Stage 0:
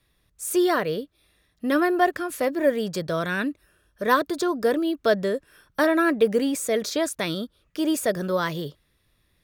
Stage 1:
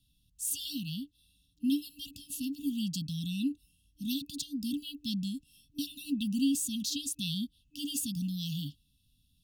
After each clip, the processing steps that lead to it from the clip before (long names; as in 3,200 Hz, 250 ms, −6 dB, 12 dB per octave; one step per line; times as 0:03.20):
brick-wall band-stop 300–2,600 Hz
level −2.5 dB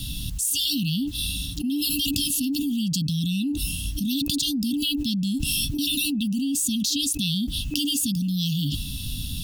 envelope flattener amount 100%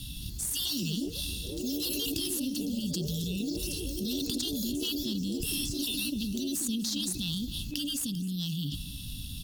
delay with pitch and tempo change per echo 219 ms, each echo +4 semitones, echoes 3, each echo −6 dB
harmonic generator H 4 −22 dB, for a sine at −5.5 dBFS
repeating echo 259 ms, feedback 50%, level −17 dB
level −8.5 dB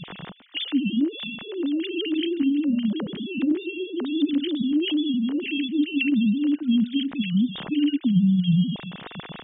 three sine waves on the formant tracks
level +9 dB